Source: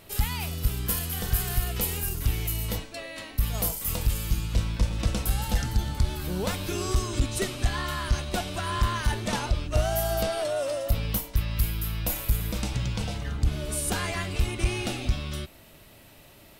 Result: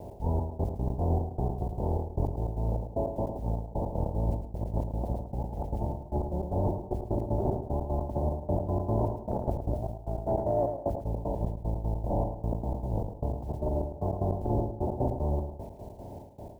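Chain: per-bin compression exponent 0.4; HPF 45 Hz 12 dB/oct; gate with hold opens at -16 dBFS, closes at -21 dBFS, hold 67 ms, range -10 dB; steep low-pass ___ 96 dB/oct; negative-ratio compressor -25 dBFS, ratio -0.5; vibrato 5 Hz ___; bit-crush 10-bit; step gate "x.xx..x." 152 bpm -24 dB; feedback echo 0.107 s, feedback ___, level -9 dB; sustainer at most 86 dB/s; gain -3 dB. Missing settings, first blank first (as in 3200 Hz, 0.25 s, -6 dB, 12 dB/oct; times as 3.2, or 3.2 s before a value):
930 Hz, 42 cents, 25%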